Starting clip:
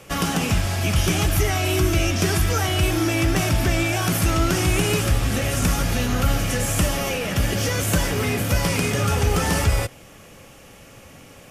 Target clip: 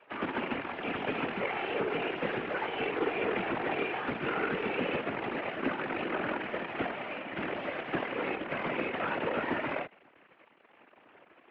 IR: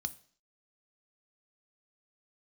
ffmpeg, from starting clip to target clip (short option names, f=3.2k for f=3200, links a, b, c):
-af "acrusher=bits=4:dc=4:mix=0:aa=0.000001,highpass=f=180:t=q:w=0.5412,highpass=f=180:t=q:w=1.307,lowpass=f=2.6k:t=q:w=0.5176,lowpass=f=2.6k:t=q:w=0.7071,lowpass=f=2.6k:t=q:w=1.932,afreqshift=75,afftfilt=real='hypot(re,im)*cos(2*PI*random(0))':imag='hypot(re,im)*sin(2*PI*random(1))':win_size=512:overlap=0.75,volume=-2.5dB"